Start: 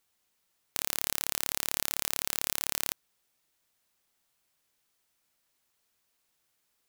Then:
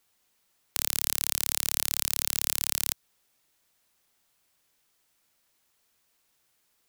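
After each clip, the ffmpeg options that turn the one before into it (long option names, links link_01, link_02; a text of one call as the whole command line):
ffmpeg -i in.wav -filter_complex "[0:a]acrossover=split=140|3000[link_01][link_02][link_03];[link_02]acompressor=threshold=-41dB:ratio=6[link_04];[link_01][link_04][link_03]amix=inputs=3:normalize=0,volume=4.5dB" out.wav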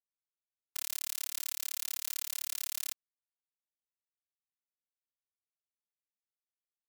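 ffmpeg -i in.wav -af "acrusher=bits=4:mix=0:aa=0.5,afftfilt=real='hypot(re,im)*cos(PI*b)':imag='0':win_size=512:overlap=0.75,volume=-6dB" out.wav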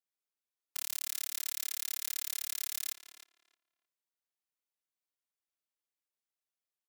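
ffmpeg -i in.wav -filter_complex "[0:a]highpass=240,asplit=2[link_01][link_02];[link_02]adelay=310,lowpass=frequency=2500:poles=1,volume=-8dB,asplit=2[link_03][link_04];[link_04]adelay=310,lowpass=frequency=2500:poles=1,volume=0.21,asplit=2[link_05][link_06];[link_06]adelay=310,lowpass=frequency=2500:poles=1,volume=0.21[link_07];[link_01][link_03][link_05][link_07]amix=inputs=4:normalize=0" out.wav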